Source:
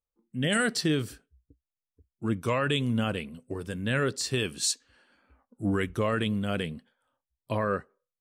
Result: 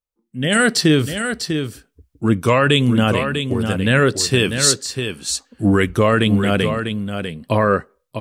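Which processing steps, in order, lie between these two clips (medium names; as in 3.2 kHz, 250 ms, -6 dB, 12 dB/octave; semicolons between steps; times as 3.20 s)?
level rider gain up to 13 dB; on a send: delay 647 ms -7.5 dB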